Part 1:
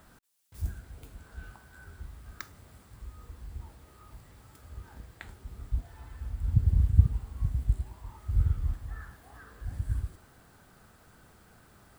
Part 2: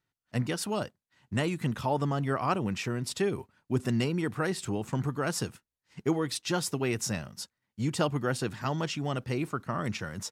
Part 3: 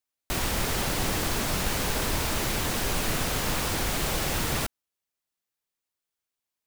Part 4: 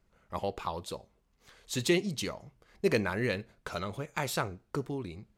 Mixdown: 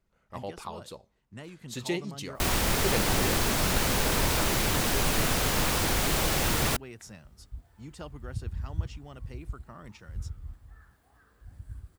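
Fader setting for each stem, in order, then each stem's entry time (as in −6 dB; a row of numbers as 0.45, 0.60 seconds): −11.5, −15.0, +1.5, −4.5 decibels; 1.80, 0.00, 2.10, 0.00 seconds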